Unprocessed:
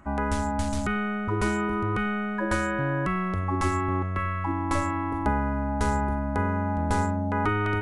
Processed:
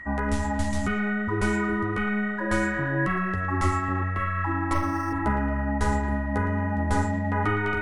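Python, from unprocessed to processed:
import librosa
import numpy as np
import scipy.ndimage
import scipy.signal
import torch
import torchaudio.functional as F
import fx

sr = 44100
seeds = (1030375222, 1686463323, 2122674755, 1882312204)

y = fx.echo_banded(x, sr, ms=113, feedback_pct=71, hz=1700.0, wet_db=-8.0)
y = y + 10.0 ** (-37.0 / 20.0) * np.sin(2.0 * np.pi * 1900.0 * np.arange(len(y)) / sr)
y = fx.chorus_voices(y, sr, voices=4, hz=1.2, base_ms=12, depth_ms=3.0, mix_pct=35)
y = fx.resample_linear(y, sr, factor=6, at=(4.73, 5.13))
y = y * 10.0 ** (2.0 / 20.0)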